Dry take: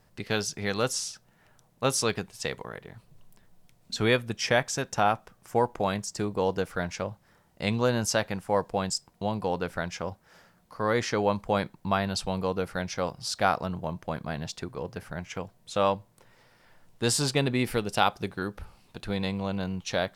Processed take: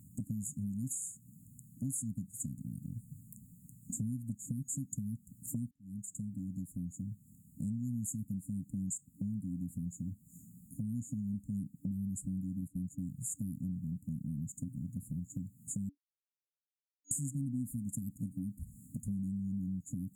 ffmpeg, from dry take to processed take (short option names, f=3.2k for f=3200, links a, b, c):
-filter_complex "[0:a]asettb=1/sr,asplit=3[a][b][c];[a]atrim=end=12.614[d];[b]atrim=start=12.61:end=13.07,asetpts=PTS-STARTPTS,afade=t=in:d=0.004:c=qsin,afade=t=out:st=0.456:d=0.004:c=qsin,agate=range=-13dB:threshold=-39dB:ratio=16:release=100:detection=peak[e];[c]atrim=start=13.066[f];[d][e]acrossfade=d=0.004:c1=hsin:c2=qsin[g];[g][f]acrossfade=d=0.004:c1=qsin:c2=hsin,asplit=4[h][i][j][k];[h]atrim=end=5.71,asetpts=PTS-STARTPTS,afade=t=out:st=5.706:d=0.004:c=hsin[l];[i]atrim=start=5.71:end=15.89,asetpts=PTS-STARTPTS,afade=t=in:d=3.25:c=qsin,afade=t=out:st=10.176:d=0.004:c=hsin[m];[j]atrim=start=15.89:end=17.11,asetpts=PTS-STARTPTS,volume=0[n];[k]atrim=start=17.11,asetpts=PTS-STARTPTS,afade=t=in:d=0.004:c=hsin[o];[l][m][n][o]concat=n=4:v=0:a=1,highpass=87,afftfilt=real='re*(1-between(b*sr/4096,290,6700))':imag='im*(1-between(b*sr/4096,290,6700))':win_size=4096:overlap=0.75,acompressor=threshold=-49dB:ratio=4,volume=11dB"